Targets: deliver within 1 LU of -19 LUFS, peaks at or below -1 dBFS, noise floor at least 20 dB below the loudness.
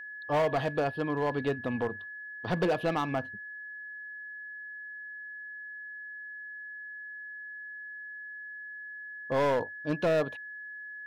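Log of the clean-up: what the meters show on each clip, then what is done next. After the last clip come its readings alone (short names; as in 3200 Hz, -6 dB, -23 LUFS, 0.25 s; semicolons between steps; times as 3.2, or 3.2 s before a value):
clipped 1.5%; flat tops at -22.0 dBFS; steady tone 1700 Hz; tone level -40 dBFS; loudness -33.5 LUFS; peak -22.0 dBFS; loudness target -19.0 LUFS
-> clip repair -22 dBFS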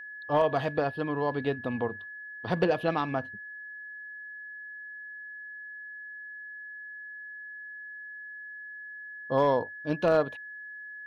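clipped 0.0%; steady tone 1700 Hz; tone level -40 dBFS
-> notch 1700 Hz, Q 30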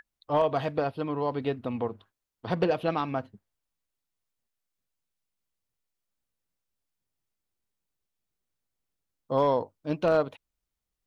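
steady tone none; loudness -29.0 LUFS; peak -12.5 dBFS; loudness target -19.0 LUFS
-> gain +10 dB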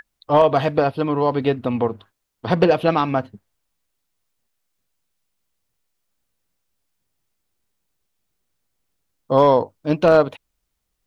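loudness -19.0 LUFS; peak -2.5 dBFS; noise floor -76 dBFS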